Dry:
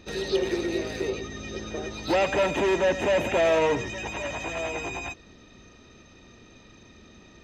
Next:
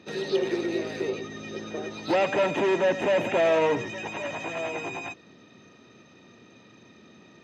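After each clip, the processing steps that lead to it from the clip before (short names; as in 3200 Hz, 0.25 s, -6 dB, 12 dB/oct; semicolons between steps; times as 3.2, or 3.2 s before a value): HPF 120 Hz 24 dB/oct; high shelf 6200 Hz -10.5 dB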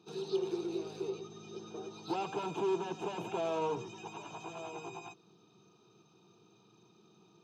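fixed phaser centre 380 Hz, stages 8; gain -7.5 dB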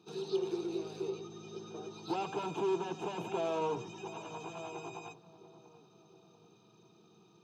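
darkening echo 0.69 s, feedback 57%, low-pass 970 Hz, level -15.5 dB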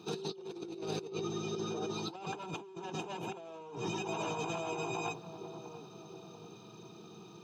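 negative-ratio compressor -46 dBFS, ratio -1; gain +5 dB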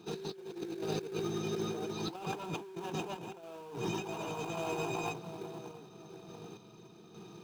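random-step tremolo 3.5 Hz; in parallel at -9 dB: sample-rate reducer 2000 Hz, jitter 20%; on the sum: gain +1 dB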